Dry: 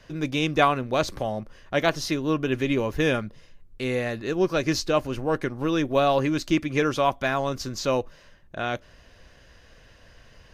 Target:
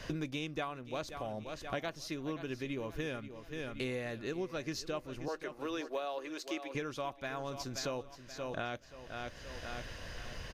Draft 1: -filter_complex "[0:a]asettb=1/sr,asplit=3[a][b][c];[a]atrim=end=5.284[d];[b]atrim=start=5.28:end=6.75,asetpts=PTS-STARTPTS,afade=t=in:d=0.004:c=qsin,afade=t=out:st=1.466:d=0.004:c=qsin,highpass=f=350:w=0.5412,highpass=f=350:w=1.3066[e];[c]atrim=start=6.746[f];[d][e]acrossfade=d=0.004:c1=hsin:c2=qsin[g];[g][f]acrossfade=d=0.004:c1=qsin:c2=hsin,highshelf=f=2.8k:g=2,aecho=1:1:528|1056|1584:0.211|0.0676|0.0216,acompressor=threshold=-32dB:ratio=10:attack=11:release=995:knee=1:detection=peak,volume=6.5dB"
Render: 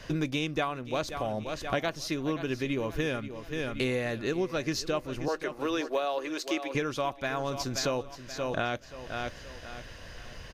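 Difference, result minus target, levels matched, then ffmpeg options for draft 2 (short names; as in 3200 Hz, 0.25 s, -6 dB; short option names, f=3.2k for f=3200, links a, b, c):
compressor: peak gain reduction -8 dB
-filter_complex "[0:a]asettb=1/sr,asplit=3[a][b][c];[a]atrim=end=5.284[d];[b]atrim=start=5.28:end=6.75,asetpts=PTS-STARTPTS,afade=t=in:d=0.004:c=qsin,afade=t=out:st=1.466:d=0.004:c=qsin,highpass=f=350:w=0.5412,highpass=f=350:w=1.3066[e];[c]atrim=start=6.746[f];[d][e]acrossfade=d=0.004:c1=hsin:c2=qsin[g];[g][f]acrossfade=d=0.004:c1=qsin:c2=hsin,highshelf=f=2.8k:g=2,aecho=1:1:528|1056|1584:0.211|0.0676|0.0216,acompressor=threshold=-41dB:ratio=10:attack=11:release=995:knee=1:detection=peak,volume=6.5dB"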